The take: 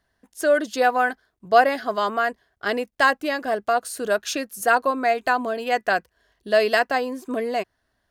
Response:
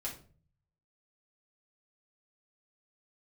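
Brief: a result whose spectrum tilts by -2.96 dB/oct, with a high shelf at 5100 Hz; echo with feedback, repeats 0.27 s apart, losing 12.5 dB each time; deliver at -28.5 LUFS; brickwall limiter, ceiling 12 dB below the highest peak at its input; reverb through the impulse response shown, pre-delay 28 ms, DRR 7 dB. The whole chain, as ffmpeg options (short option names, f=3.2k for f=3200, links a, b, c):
-filter_complex "[0:a]highshelf=f=5.1k:g=-3,alimiter=limit=-16dB:level=0:latency=1,aecho=1:1:270|540|810:0.237|0.0569|0.0137,asplit=2[a][b];[1:a]atrim=start_sample=2205,adelay=28[c];[b][c]afir=irnorm=-1:irlink=0,volume=-7.5dB[d];[a][d]amix=inputs=2:normalize=0,volume=-2.5dB"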